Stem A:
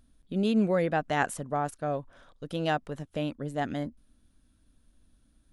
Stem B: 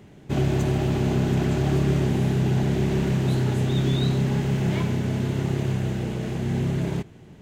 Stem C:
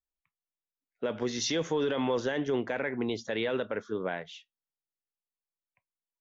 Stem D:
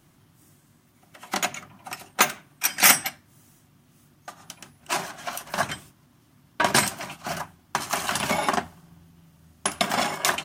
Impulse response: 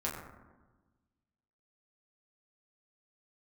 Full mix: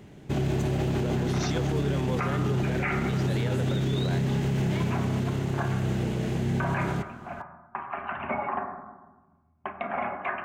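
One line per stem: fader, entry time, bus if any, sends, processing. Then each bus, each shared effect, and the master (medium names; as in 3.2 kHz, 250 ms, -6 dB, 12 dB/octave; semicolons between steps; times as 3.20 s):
-13.5 dB, 0.00 s, no send, short-mantissa float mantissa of 4-bit
0.0 dB, 0.00 s, no send, none
0.0 dB, 0.00 s, no send, none
-5.0 dB, 0.00 s, send -3 dB, resonances exaggerated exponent 1.5; elliptic low-pass 2.5 kHz, stop band 50 dB; upward expansion 1.5:1, over -47 dBFS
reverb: on, RT60 1.2 s, pre-delay 6 ms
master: peak limiter -19 dBFS, peak gain reduction 14 dB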